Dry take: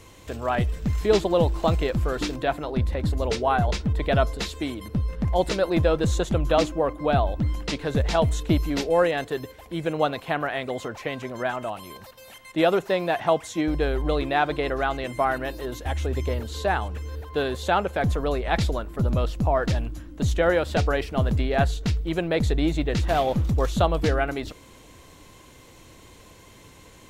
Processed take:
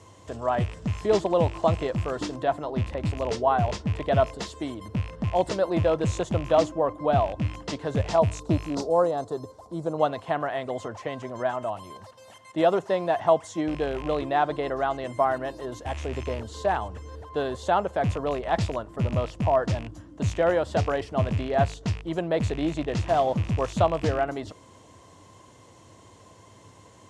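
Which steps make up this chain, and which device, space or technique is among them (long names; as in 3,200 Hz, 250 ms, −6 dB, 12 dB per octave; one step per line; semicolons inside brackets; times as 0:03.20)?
0:08.15–0:09.98: flat-topped bell 2,300 Hz −15 dB 1.2 octaves
car door speaker with a rattle (loose part that buzzes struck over −25 dBFS, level −22 dBFS; loudspeaker in its box 98–9,200 Hz, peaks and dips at 100 Hz +9 dB, 650 Hz +5 dB, 1,000 Hz +5 dB, 1,500 Hz −3 dB, 2,400 Hz −8 dB, 3,900 Hz −5 dB)
level −3 dB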